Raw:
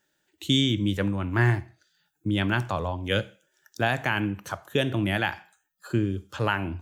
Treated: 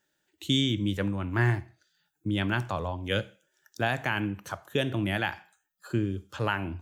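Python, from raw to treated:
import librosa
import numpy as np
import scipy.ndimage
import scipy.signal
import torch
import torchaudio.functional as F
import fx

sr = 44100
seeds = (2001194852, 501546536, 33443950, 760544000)

y = F.gain(torch.from_numpy(x), -3.0).numpy()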